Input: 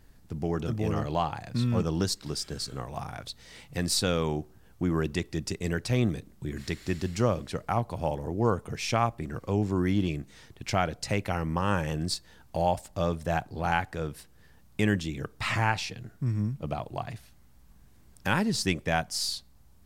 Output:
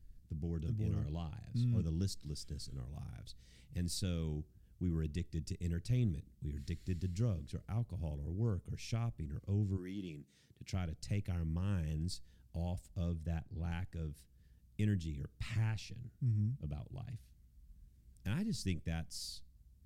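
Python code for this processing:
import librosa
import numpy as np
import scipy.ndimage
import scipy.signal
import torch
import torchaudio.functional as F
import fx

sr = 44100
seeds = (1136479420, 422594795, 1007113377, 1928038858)

y = fx.highpass(x, sr, hz=fx.line((9.76, 380.0), (10.74, 110.0)), slope=12, at=(9.76, 10.74), fade=0.02)
y = fx.high_shelf(y, sr, hz=4300.0, db=-5.0, at=(13.1, 13.71))
y = fx.tone_stack(y, sr, knobs='10-0-1')
y = y * 10.0 ** (6.5 / 20.0)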